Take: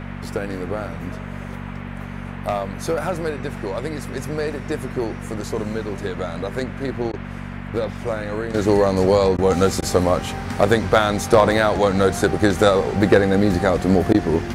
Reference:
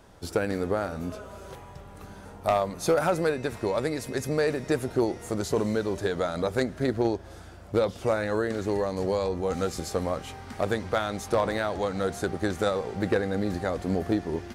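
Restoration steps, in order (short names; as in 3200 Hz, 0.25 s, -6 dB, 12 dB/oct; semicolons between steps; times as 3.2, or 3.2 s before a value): de-hum 47.6 Hz, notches 5; interpolate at 7.12/9.37/9.81/14.13, 12 ms; noise print and reduce 13 dB; gain 0 dB, from 8.54 s -11 dB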